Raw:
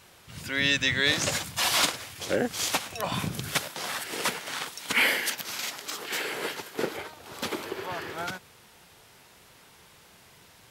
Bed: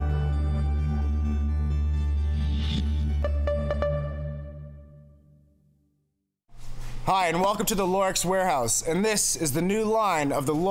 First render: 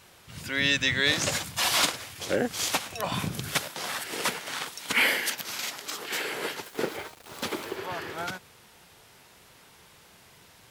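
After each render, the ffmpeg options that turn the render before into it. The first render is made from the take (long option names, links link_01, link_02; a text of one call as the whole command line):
ffmpeg -i in.wav -filter_complex "[0:a]asettb=1/sr,asplit=3[link_01][link_02][link_03];[link_01]atrim=end=6.644[link_04];[link_02]atrim=start=6.64:end=7.76,asetpts=PTS-STARTPTS,afade=type=in:duration=0.004:curve=qsin,afade=type=out:start_time=1.116:duration=0.004:curve=qsin,aeval=exprs='val(0)*gte(abs(val(0)),0.00631)':channel_layout=same[link_05];[link_03]atrim=start=7.756[link_06];[link_04][link_05]acrossfade=duration=0.004:curve1=hsin:curve2=qsin[link_07];[link_07][link_06]acrossfade=duration=0.004:curve1=qsin:curve2=hsin" out.wav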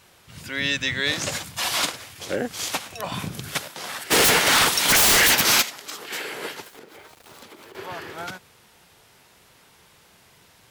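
ffmpeg -i in.wav -filter_complex "[0:a]asplit=3[link_01][link_02][link_03];[link_01]afade=type=out:start_time=4.1:duration=0.02[link_04];[link_02]aeval=exprs='0.224*sin(PI/2*7.08*val(0)/0.224)':channel_layout=same,afade=type=in:start_time=4.1:duration=0.02,afade=type=out:start_time=5.61:duration=0.02[link_05];[link_03]afade=type=in:start_time=5.61:duration=0.02[link_06];[link_04][link_05][link_06]amix=inputs=3:normalize=0,asettb=1/sr,asplit=3[link_07][link_08][link_09];[link_07]atrim=end=6.734[link_10];[link_08]atrim=start=6.73:end=7.75,asetpts=PTS-STARTPTS,afade=type=in:duration=0.004:curve=qsin,afade=type=out:start_time=1.016:duration=0.004:curve=qsin,acompressor=threshold=-41dB:ratio=10:attack=3.2:release=140:knee=1:detection=peak[link_11];[link_09]atrim=start=7.746[link_12];[link_10][link_11]acrossfade=duration=0.004:curve1=hsin:curve2=qsin[link_13];[link_13][link_12]acrossfade=duration=0.004:curve1=qsin:curve2=hsin" out.wav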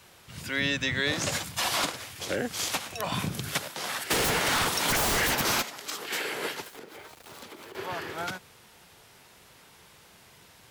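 ffmpeg -i in.wav -filter_complex "[0:a]acrossover=split=140|1400[link_01][link_02][link_03];[link_02]alimiter=limit=-22.5dB:level=0:latency=1[link_04];[link_03]acompressor=threshold=-27dB:ratio=6[link_05];[link_01][link_04][link_05]amix=inputs=3:normalize=0" out.wav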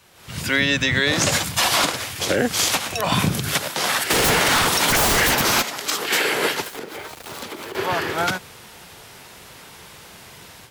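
ffmpeg -i in.wav -af "alimiter=limit=-20dB:level=0:latency=1:release=115,dynaudnorm=framelen=140:gausssize=3:maxgain=12dB" out.wav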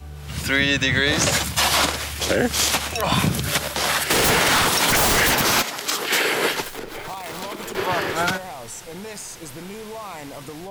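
ffmpeg -i in.wav -i bed.wav -filter_complex "[1:a]volume=-11.5dB[link_01];[0:a][link_01]amix=inputs=2:normalize=0" out.wav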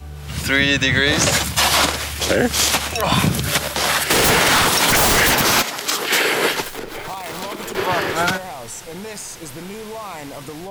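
ffmpeg -i in.wav -af "volume=3dB" out.wav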